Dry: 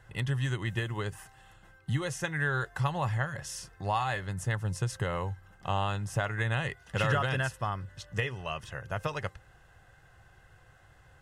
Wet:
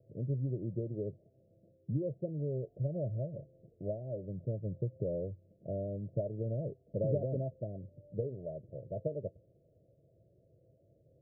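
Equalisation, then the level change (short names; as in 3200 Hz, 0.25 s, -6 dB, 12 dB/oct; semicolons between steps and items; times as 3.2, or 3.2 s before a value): HPF 160 Hz 12 dB/oct; Chebyshev low-pass 660 Hz, order 10; +1.0 dB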